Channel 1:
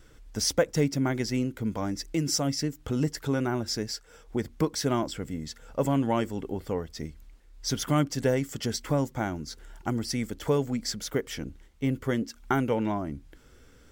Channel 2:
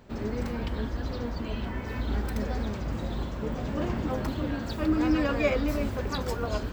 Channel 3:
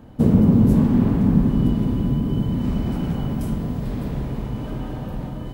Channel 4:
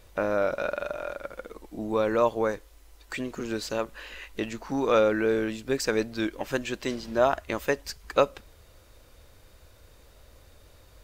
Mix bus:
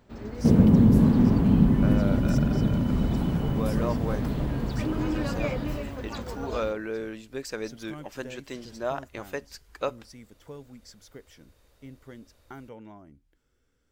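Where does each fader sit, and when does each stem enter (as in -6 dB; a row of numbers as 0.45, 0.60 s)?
-18.0, -6.0, -2.5, -8.0 dB; 0.00, 0.00, 0.25, 1.65 s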